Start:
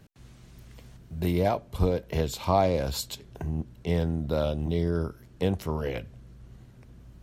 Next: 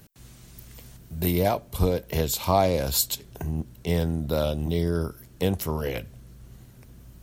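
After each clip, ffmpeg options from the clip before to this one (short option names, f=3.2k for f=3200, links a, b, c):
-af "aemphasis=mode=production:type=50fm,volume=2dB"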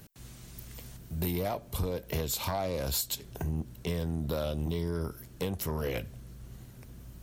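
-af "acompressor=threshold=-26dB:ratio=6,asoftclip=type=tanh:threshold=-23dB"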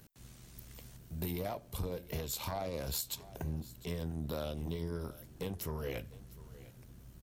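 -af "tremolo=f=76:d=0.462,aecho=1:1:703:0.119,volume=-4dB"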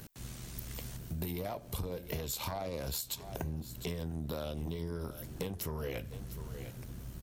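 -af "acompressor=threshold=-45dB:ratio=5,volume=9.5dB"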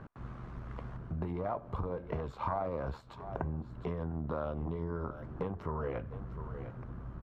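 -af "lowpass=f=1.2k:t=q:w=2.6,volume=1dB"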